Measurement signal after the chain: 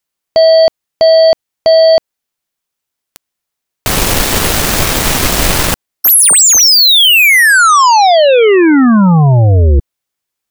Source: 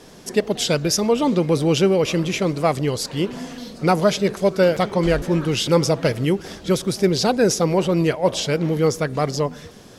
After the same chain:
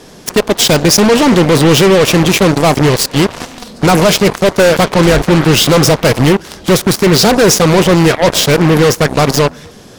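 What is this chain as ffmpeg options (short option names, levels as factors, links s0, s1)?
-af "apsyclip=6.31,aeval=exprs='1.06*(cos(1*acos(clip(val(0)/1.06,-1,1)))-cos(1*PI/2))+0.237*(cos(7*acos(clip(val(0)/1.06,-1,1)))-cos(7*PI/2))':c=same,volume=0.75"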